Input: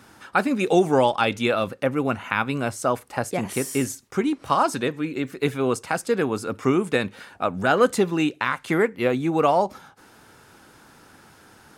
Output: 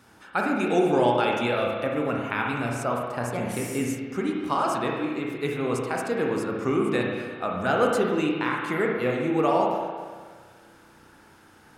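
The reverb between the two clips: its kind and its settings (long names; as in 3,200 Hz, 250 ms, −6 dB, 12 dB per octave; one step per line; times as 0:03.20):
spring reverb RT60 1.6 s, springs 33/57 ms, chirp 75 ms, DRR −1 dB
level −6 dB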